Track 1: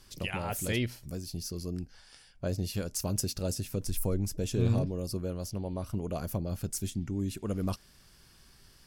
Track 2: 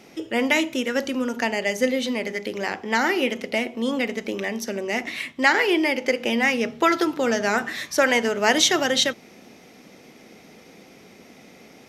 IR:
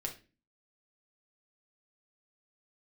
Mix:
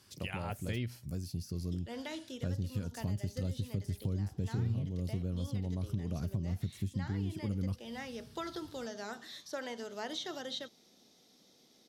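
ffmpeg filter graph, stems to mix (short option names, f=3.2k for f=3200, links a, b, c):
-filter_complex "[0:a]deesser=0.95,highpass=f=74:w=0.5412,highpass=f=74:w=1.3066,asubboost=boost=4.5:cutoff=250,volume=-3.5dB[a];[1:a]acrossover=split=2500[b][c];[c]acompressor=threshold=-38dB:ratio=4:attack=1:release=60[d];[b][d]amix=inputs=2:normalize=0,highshelf=f=3k:t=q:w=3:g=7.5,adelay=1550,volume=-19.5dB[e];[a][e]amix=inputs=2:normalize=0,acompressor=threshold=-33dB:ratio=4"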